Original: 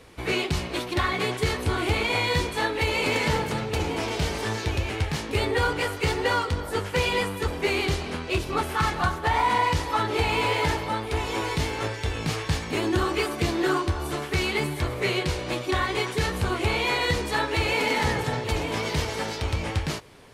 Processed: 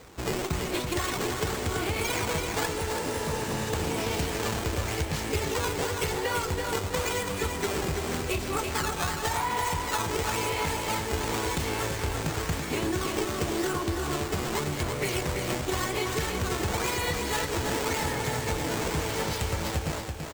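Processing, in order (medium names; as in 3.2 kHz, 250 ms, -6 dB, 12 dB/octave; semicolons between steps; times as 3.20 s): decimation with a swept rate 10×, swing 160% 0.92 Hz; peaking EQ 8 kHz +12 dB 0.79 oct; compression, threshold -26 dBFS, peak gain reduction 8.5 dB; spectral replace 2.74–3.68 s, 1.2–9 kHz; on a send: feedback delay 333 ms, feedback 38%, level -5.5 dB; on the sum: sliding maximum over 3 samples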